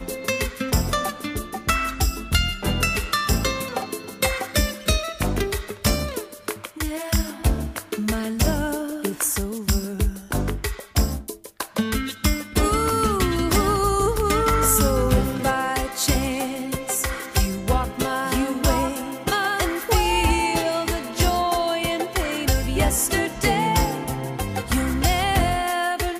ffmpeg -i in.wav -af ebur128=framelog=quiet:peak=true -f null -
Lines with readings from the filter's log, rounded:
Integrated loudness:
  I:         -22.9 LUFS
  Threshold: -32.9 LUFS
Loudness range:
  LRA:         4.9 LU
  Threshold: -42.9 LUFS
  LRA low:   -25.3 LUFS
  LRA high:  -20.4 LUFS
True peak:
  Peak:       -6.7 dBFS